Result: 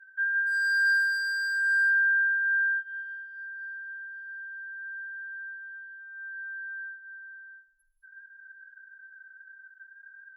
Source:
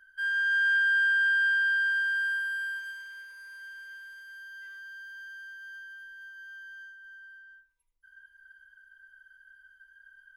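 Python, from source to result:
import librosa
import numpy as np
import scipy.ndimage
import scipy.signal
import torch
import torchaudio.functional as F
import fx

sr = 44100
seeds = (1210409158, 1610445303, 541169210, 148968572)

y = fx.spec_expand(x, sr, power=2.7)
y = fx.env_lowpass_down(y, sr, base_hz=1400.0, full_db=-28.5)
y = np.clip(y, -10.0 ** (-28.5 / 20.0), 10.0 ** (-28.5 / 20.0))
y = fx.rev_gated(y, sr, seeds[0], gate_ms=250, shape='rising', drr_db=8.5)
y = y * 10.0 ** (5.5 / 20.0)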